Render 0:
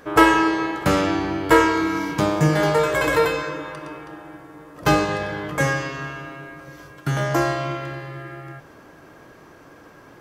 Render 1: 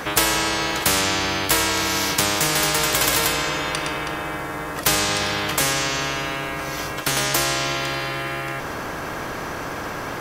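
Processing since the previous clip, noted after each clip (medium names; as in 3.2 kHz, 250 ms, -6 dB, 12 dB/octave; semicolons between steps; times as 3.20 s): spectrum-flattening compressor 4:1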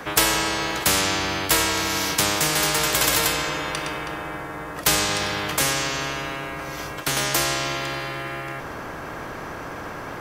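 three bands expanded up and down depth 40%; trim -1.5 dB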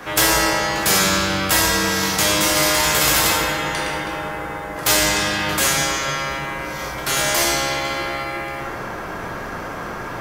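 plate-style reverb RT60 1.2 s, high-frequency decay 0.65×, DRR -4.5 dB; trim -1.5 dB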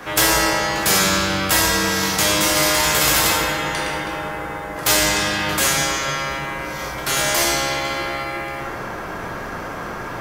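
crackle 62 per s -45 dBFS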